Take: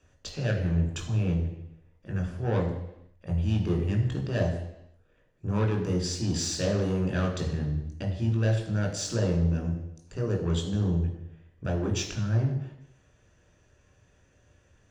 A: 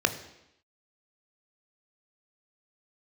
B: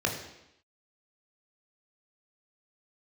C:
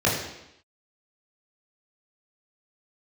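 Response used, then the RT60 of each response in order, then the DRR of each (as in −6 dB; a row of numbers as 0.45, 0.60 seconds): B; 0.85, 0.85, 0.85 seconds; 8.0, 0.5, −6.0 decibels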